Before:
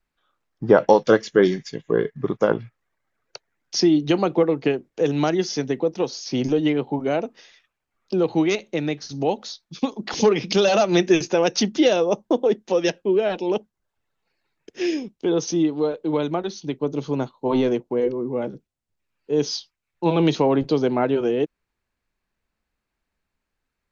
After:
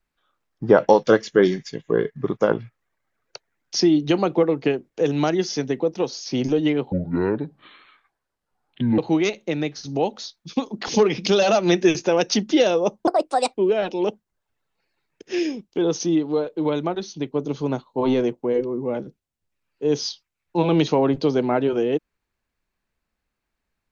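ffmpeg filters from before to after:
-filter_complex "[0:a]asplit=5[a][b][c][d][e];[a]atrim=end=6.924[f];[b]atrim=start=6.92:end=8.24,asetpts=PTS-STARTPTS,asetrate=28224,aresample=44100,atrim=end_sample=90956,asetpts=PTS-STARTPTS[g];[c]atrim=start=8.236:end=12.334[h];[d]atrim=start=12.33:end=13.02,asetpts=PTS-STARTPTS,asetrate=64386,aresample=44100[i];[e]atrim=start=13.016[j];[f][g]acrossfade=d=0.004:c1=hsin:c2=hsin[k];[k][h]acrossfade=d=0.004:c1=hsin:c2=hsin[l];[l][i]acrossfade=d=0.004:c1=hsin:c2=hsin[m];[m][j]acrossfade=d=0.004:c1=hsin:c2=hsin"

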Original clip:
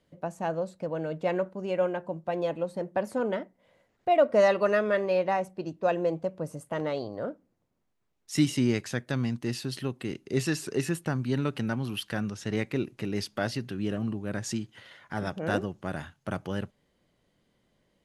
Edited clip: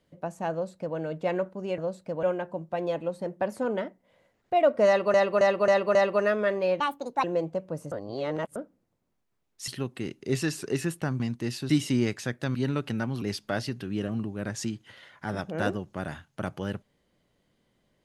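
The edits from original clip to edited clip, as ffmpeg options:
-filter_complex "[0:a]asplit=16[a][b][c][d][e][f][g][h][i][j][k][l][m][n][o][p];[a]atrim=end=1.782[q];[b]atrim=start=0.518:end=0.972[r];[c]atrim=start=1.778:end=4.692[s];[d]atrim=start=4.418:end=4.692[t];[e]atrim=start=4.418:end=4.692[u];[f]atrim=start=4.418:end=4.692[v];[g]atrim=start=4.418:end=5.274[w];[h]atrim=start=5.27:end=5.93,asetpts=PTS-STARTPTS,asetrate=66591,aresample=44100,atrim=end_sample=19275,asetpts=PTS-STARTPTS[x];[i]atrim=start=5.926:end=6.612[y];[j]atrim=start=6.608:end=7.252,asetpts=PTS-STARTPTS,areverse[z];[k]atrim=start=7.248:end=8.372[aa];[l]atrim=start=9.718:end=11.242[ab];[m]atrim=start=9.218:end=9.722[ac];[n]atrim=start=8.368:end=9.222[ad];[o]atrim=start=11.238:end=11.912[ae];[p]atrim=start=13.098[af];[q][r]acrossfade=d=0.004:c1=hsin:c2=hsin[ag];[ag][s]acrossfade=d=0.004:c1=hsin:c2=hsin[ah];[ah][t]acrossfade=d=0.004:c1=hsin:c2=hsin[ai];[ai][u]acrossfade=d=0.004:c1=hsin:c2=hsin[aj];[aj][v]acrossfade=d=0.004:c1=hsin:c2=hsin[ak];[ak][w]acrossfade=d=0.004:c1=hsin:c2=hsin[al];[al][x]acrossfade=d=0.004:c1=hsin:c2=hsin[am];[am][y]acrossfade=d=0.004:c1=hsin:c2=hsin[an];[an][z]acrossfade=d=0.004:c1=hsin:c2=hsin[ao];[ao][aa]acrossfade=d=0.004:c1=hsin:c2=hsin[ap];[ap][ab]acrossfade=d=0.004:c1=hsin:c2=hsin[aq];[aq][ac]acrossfade=d=0.004:c1=hsin:c2=hsin[ar];[ar][ad]acrossfade=d=0.004:c1=hsin:c2=hsin[as];[as][ae]acrossfade=d=0.004:c1=hsin:c2=hsin[at];[at][af]acrossfade=d=0.004:c1=hsin:c2=hsin"

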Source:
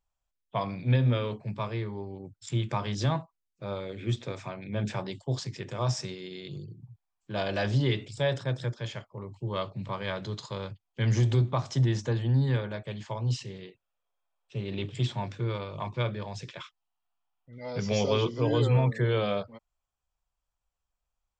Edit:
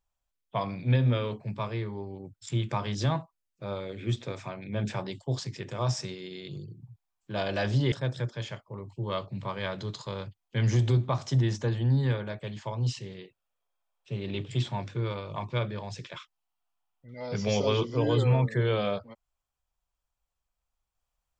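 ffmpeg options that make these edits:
-filter_complex "[0:a]asplit=2[a][b];[a]atrim=end=7.922[c];[b]atrim=start=8.358[d];[c][d]acrossfade=d=0.004:c1=hsin:c2=hsin"

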